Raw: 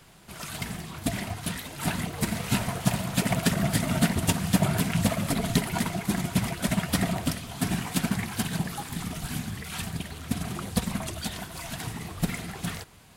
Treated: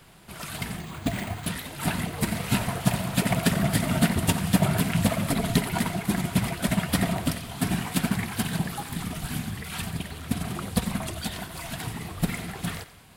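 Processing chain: peaking EQ 6.2 kHz -4.5 dB 0.65 oct; on a send: thinning echo 90 ms, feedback 46%, level -14.5 dB; 0.79–1.46 s: on the sum: careless resampling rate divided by 4×, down filtered, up hold; trim +1.5 dB

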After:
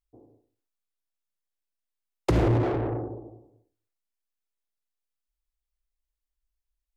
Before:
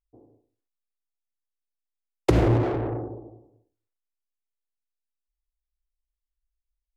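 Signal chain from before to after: saturation -15 dBFS, distortion -14 dB

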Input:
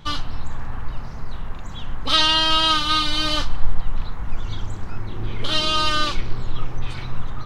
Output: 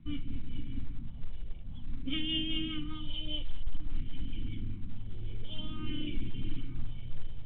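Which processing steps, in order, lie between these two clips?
cascade formant filter i; on a send: echo that smears into a reverb 519 ms, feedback 45%, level -12.5 dB; on the sum: phase shifter stages 4, 0.52 Hz, lowest notch 250–1100 Hz; saturation -24.5 dBFS, distortion -12 dB; rotary cabinet horn 5 Hz, later 1 Hz, at 4.77 s; trim +5 dB; µ-law 64 kbps 8 kHz

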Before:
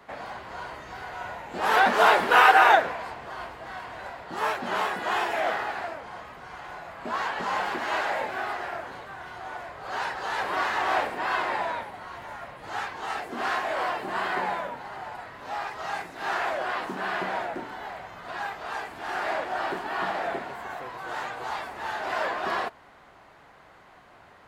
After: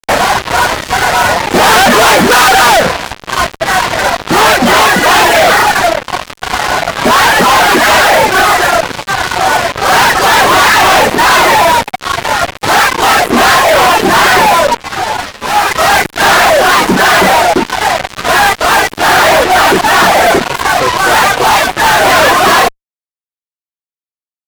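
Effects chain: reverb removal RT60 1.7 s; fuzz box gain 45 dB, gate -44 dBFS; 14.77–15.71 s: three-phase chorus; trim +8.5 dB

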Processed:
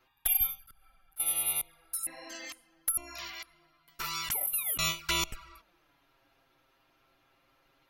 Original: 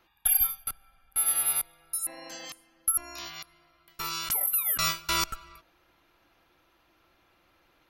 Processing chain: touch-sensitive flanger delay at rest 7.8 ms, full sweep at -26 dBFS; 0.56–1.20 s: slow attack 186 ms; dynamic bell 2.1 kHz, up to +6 dB, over -56 dBFS, Q 2.2

